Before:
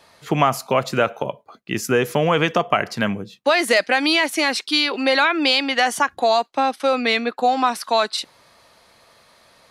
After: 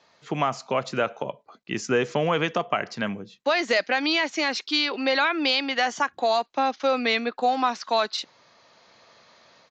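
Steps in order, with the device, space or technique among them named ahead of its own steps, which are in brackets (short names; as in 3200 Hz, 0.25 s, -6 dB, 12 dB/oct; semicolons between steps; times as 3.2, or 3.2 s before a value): Bluetooth headset (HPF 120 Hz 12 dB/oct; AGC gain up to 6.5 dB; downsampling 16000 Hz; gain -8 dB; SBC 64 kbps 16000 Hz)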